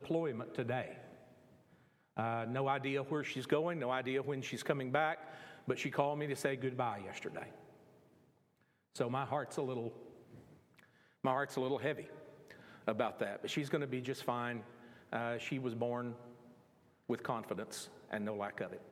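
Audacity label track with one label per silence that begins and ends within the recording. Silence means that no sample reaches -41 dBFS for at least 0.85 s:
0.910000	2.170000	silence
7.440000	8.960000	silence
9.890000	11.240000	silence
16.130000	17.090000	silence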